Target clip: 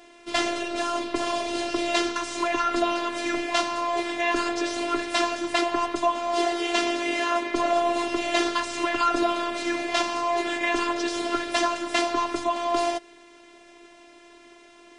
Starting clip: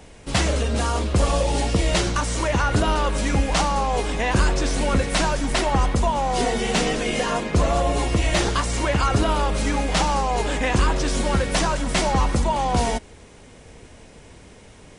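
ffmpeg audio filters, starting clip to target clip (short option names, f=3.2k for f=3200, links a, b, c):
-af "highpass=220,lowpass=3.5k,aemphasis=mode=production:type=50kf,afftfilt=real='hypot(re,im)*cos(PI*b)':imag='0':win_size=512:overlap=0.75,volume=2dB"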